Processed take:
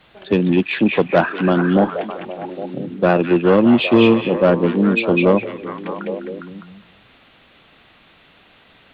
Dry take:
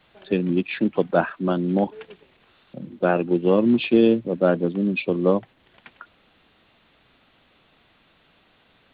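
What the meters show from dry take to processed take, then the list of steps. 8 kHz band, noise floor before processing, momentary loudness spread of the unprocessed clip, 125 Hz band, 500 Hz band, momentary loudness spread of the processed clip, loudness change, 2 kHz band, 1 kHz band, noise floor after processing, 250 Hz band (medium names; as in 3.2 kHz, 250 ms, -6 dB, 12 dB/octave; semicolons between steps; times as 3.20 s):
no reading, -61 dBFS, 8 LU, +6.5 dB, +5.5 dB, 16 LU, +5.0 dB, +9.0 dB, +7.0 dB, -52 dBFS, +5.5 dB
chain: Chebyshev shaper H 5 -18 dB, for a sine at -4.5 dBFS; repeats whose band climbs or falls 203 ms, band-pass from 2.5 kHz, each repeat -0.7 oct, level -1 dB; trim +3 dB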